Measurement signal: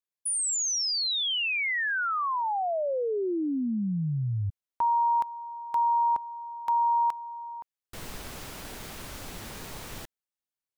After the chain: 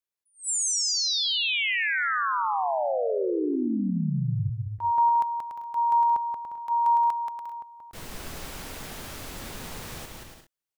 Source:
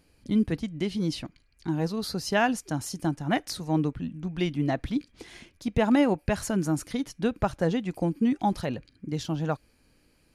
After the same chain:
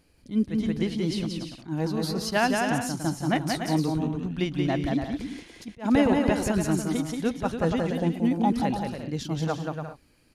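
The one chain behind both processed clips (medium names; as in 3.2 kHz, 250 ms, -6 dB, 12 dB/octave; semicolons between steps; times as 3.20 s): bouncing-ball echo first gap 180 ms, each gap 0.6×, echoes 5; attacks held to a fixed rise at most 260 dB/s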